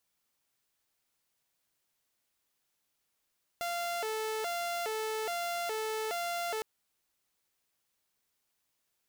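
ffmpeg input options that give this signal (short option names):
-f lavfi -i "aevalsrc='0.0316*(2*mod((564.5*t+127.5/1.2*(0.5-abs(mod(1.2*t,1)-0.5))),1)-1)':d=3.01:s=44100"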